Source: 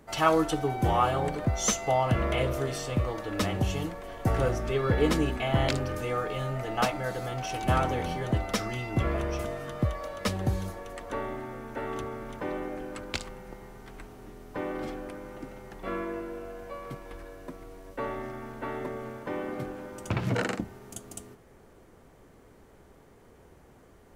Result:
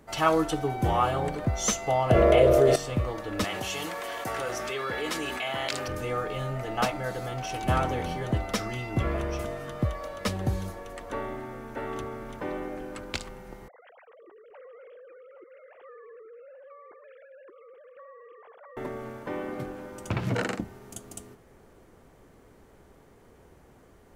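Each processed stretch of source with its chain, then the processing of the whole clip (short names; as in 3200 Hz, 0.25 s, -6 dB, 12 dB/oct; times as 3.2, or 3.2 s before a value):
2.1–2.76 band shelf 510 Hz +10 dB 1.2 oct + fast leveller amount 70%
3.44–5.88 HPF 1300 Hz 6 dB/oct + fast leveller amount 70%
13.68–18.77 sine-wave speech + compressor 4:1, threshold -49 dBFS + echo 0.824 s -12.5 dB
whole clip: dry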